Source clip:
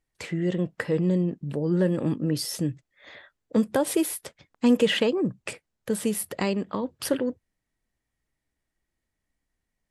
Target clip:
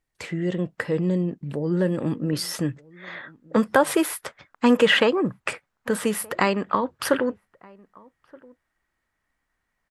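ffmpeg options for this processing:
-filter_complex "[0:a]asetnsamples=n=441:p=0,asendcmd='2.33 equalizer g 14',equalizer=f=1.3k:t=o:w=1.8:g=3,asplit=2[a][b];[b]adelay=1224,volume=-25dB,highshelf=f=4k:g=-27.6[c];[a][c]amix=inputs=2:normalize=0"

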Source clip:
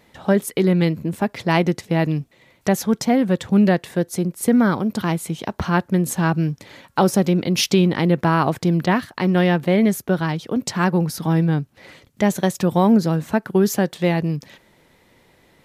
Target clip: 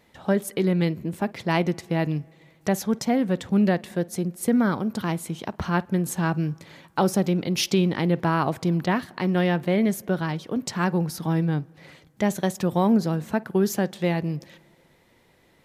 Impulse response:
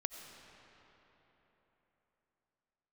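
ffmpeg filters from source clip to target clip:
-filter_complex "[0:a]asplit=2[a][b];[b]aemphasis=mode=reproduction:type=75kf[c];[1:a]atrim=start_sample=2205,asetrate=79380,aresample=44100,adelay=52[d];[c][d]afir=irnorm=-1:irlink=0,volume=-14.5dB[e];[a][e]amix=inputs=2:normalize=0,volume=-5dB"

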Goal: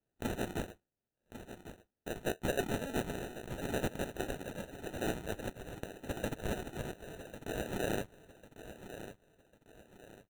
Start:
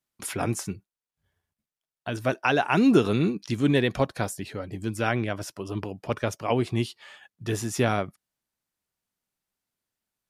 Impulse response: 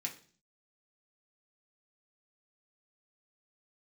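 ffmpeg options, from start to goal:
-filter_complex "[0:a]highpass=1k,acompressor=threshold=-37dB:ratio=1.5,acrusher=samples=40:mix=1:aa=0.000001,aeval=exprs='(mod(15.8*val(0)+1,2)-1)/15.8':c=same,asuperstop=centerf=4900:order=4:qfactor=4,asplit=2[a][b];[b]aecho=0:1:1098|2196|3294|4392:0.251|0.0929|0.0344|0.0127[c];[a][c]amix=inputs=2:normalize=0,volume=1dB"

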